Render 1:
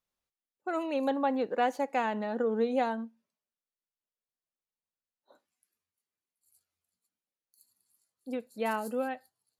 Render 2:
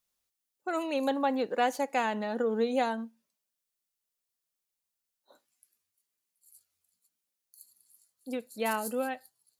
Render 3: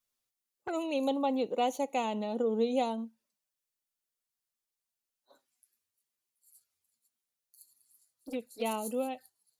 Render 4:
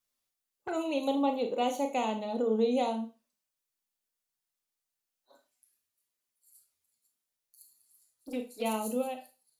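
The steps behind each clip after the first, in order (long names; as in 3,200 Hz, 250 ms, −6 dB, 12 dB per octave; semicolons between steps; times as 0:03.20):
high-shelf EQ 3,600 Hz +11 dB
flanger swept by the level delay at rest 8.4 ms, full sweep at −30 dBFS
four-comb reverb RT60 0.31 s, combs from 25 ms, DRR 5 dB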